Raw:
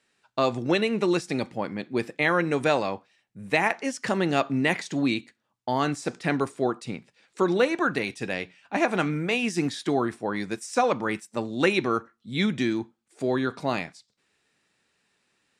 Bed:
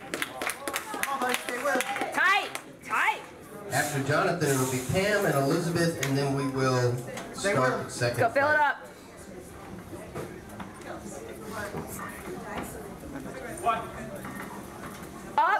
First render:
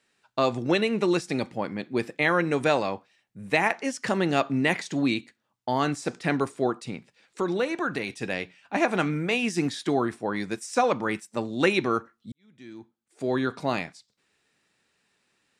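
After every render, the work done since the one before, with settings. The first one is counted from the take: 6.80–8.23 s: compression 1.5:1, threshold -29 dBFS; 12.32–13.37 s: fade in quadratic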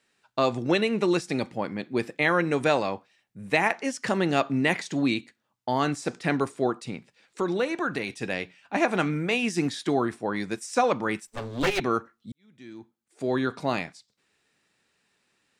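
11.27–11.80 s: comb filter that takes the minimum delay 7.3 ms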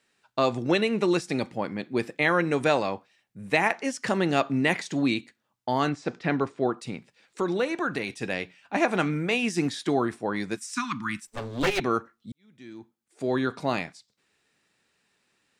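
5.89–6.78 s: distance through air 140 m; 10.57–11.24 s: Chebyshev band-stop 270–1100 Hz, order 3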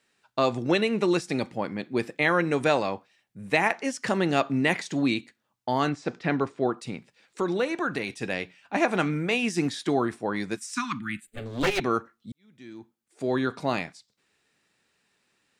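10.99–11.46 s: static phaser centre 2.4 kHz, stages 4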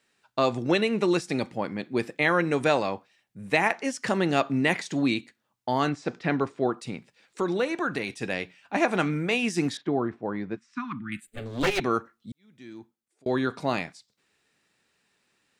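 9.77–11.12 s: tape spacing loss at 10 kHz 41 dB; 12.78–13.26 s: fade out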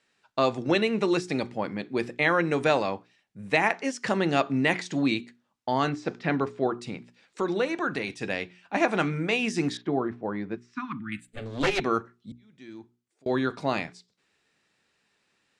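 low-pass 7.8 kHz 12 dB/octave; hum notches 60/120/180/240/300/360/420 Hz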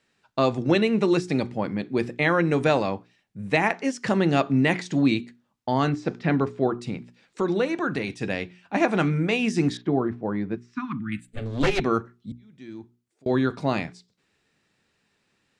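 bass shelf 280 Hz +9 dB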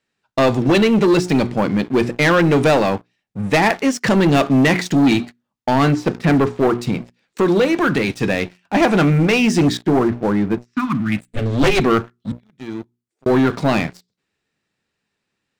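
waveshaping leveller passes 3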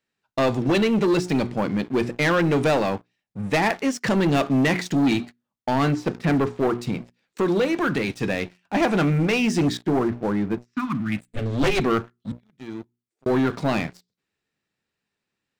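trim -6 dB

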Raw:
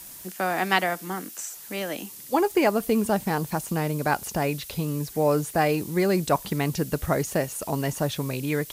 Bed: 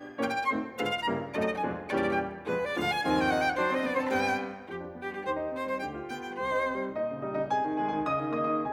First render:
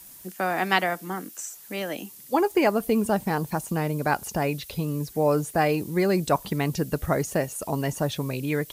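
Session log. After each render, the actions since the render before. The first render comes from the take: noise reduction 6 dB, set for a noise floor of -43 dBFS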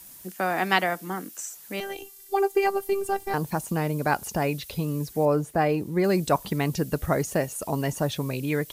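1.80–3.34 s: robot voice 395 Hz; 5.25–6.04 s: treble shelf 2.6 kHz -9 dB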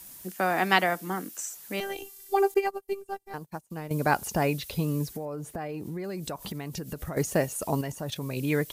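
2.54–3.91 s: upward expansion 2.5:1, over -40 dBFS; 5.12–7.17 s: compression 10:1, threshold -31 dBFS; 7.81–8.37 s: level held to a coarse grid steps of 11 dB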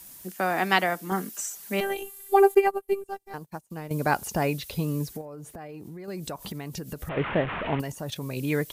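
1.11–3.04 s: comb 5 ms, depth 97%; 5.21–6.08 s: compression 2:1, threshold -41 dBFS; 7.09–7.80 s: one-bit delta coder 16 kbps, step -26 dBFS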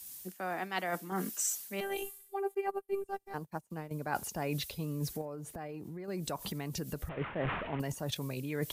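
reverse; compression 10:1, threshold -32 dBFS, peak gain reduction 19 dB; reverse; three bands expanded up and down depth 40%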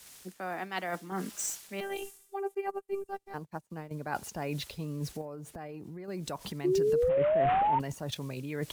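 median filter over 3 samples; 6.64–7.79 s: painted sound rise 350–930 Hz -26 dBFS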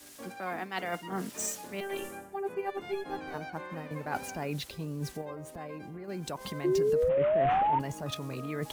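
add bed -15.5 dB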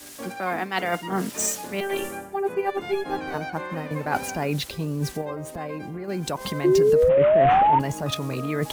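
trim +9 dB

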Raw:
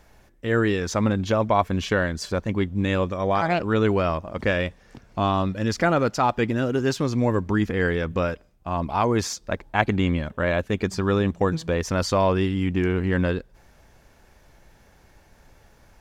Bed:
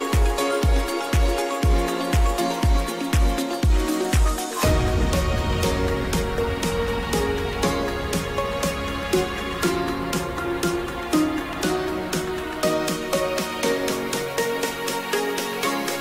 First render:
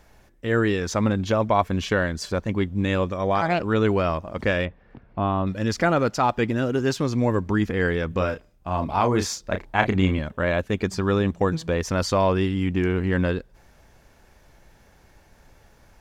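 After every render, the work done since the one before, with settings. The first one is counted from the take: 4.65–5.47 s: distance through air 460 m; 8.17–10.19 s: doubling 32 ms -7 dB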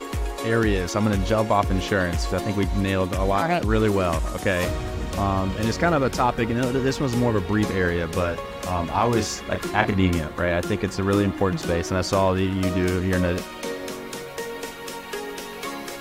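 add bed -8 dB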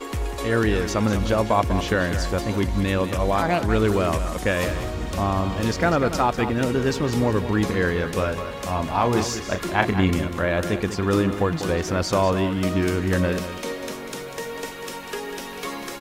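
delay 195 ms -10.5 dB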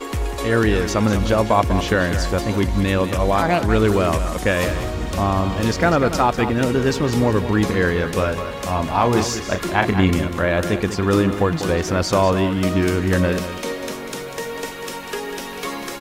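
trim +3.5 dB; peak limiter -1 dBFS, peak gain reduction 3 dB

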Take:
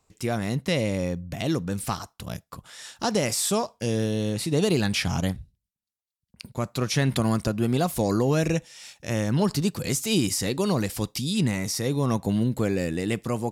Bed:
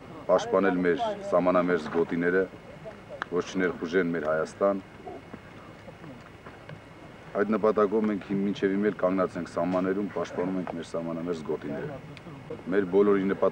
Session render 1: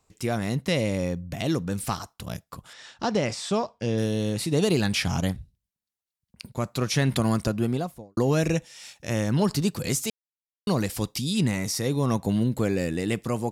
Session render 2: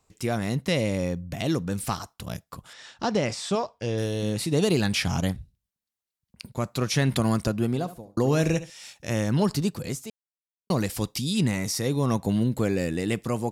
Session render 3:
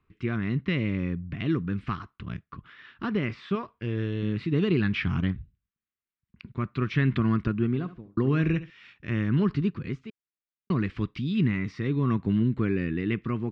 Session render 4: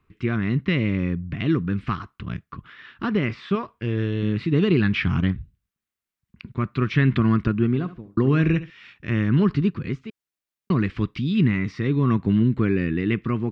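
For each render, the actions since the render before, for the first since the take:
2.73–3.98 s: distance through air 120 m; 7.51–8.17 s: studio fade out; 10.10–10.67 s: mute
3.55–4.23 s: peaking EQ 200 Hz -7.5 dB; 7.68–8.70 s: flutter echo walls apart 12 m, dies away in 0.3 s; 9.36–10.70 s: studio fade out
low-pass 2.7 kHz 24 dB/octave; high-order bell 660 Hz -15 dB 1.1 oct
trim +5 dB

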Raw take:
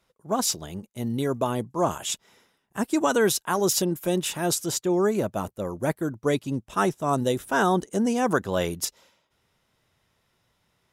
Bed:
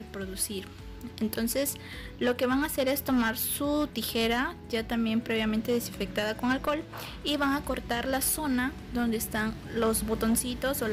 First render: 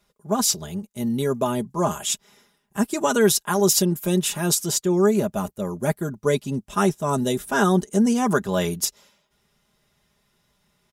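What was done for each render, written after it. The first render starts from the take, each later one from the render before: tone controls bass +4 dB, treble +4 dB; comb 4.9 ms, depth 63%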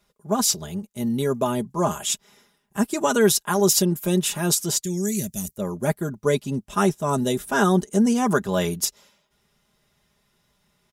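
4.83–5.57 s: FFT filter 140 Hz 0 dB, 260 Hz -6 dB, 1.3 kHz -26 dB, 1.9 kHz 0 dB, 2.8 kHz -3 dB, 4.1 kHz +4 dB, 5.9 kHz +11 dB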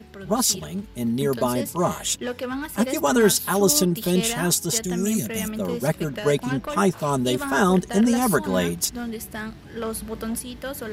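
add bed -2.5 dB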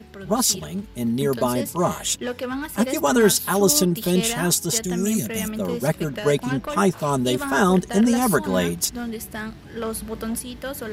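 trim +1 dB

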